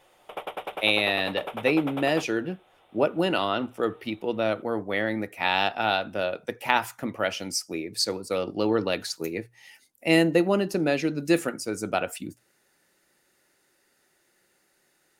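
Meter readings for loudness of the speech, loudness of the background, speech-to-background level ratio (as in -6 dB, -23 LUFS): -26.5 LUFS, -36.5 LUFS, 10.0 dB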